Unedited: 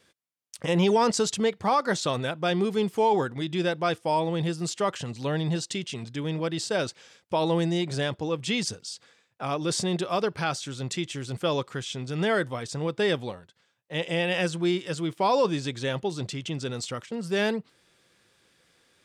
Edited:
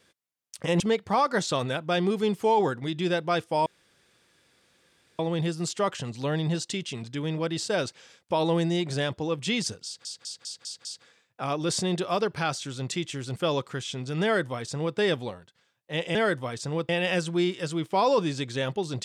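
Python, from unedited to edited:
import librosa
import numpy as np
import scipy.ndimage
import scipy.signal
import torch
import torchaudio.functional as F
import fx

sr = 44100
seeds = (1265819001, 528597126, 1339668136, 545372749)

y = fx.edit(x, sr, fx.cut(start_s=0.8, length_s=0.54),
    fx.insert_room_tone(at_s=4.2, length_s=1.53),
    fx.stutter(start_s=8.86, slice_s=0.2, count=6),
    fx.duplicate(start_s=12.24, length_s=0.74, to_s=14.16), tone=tone)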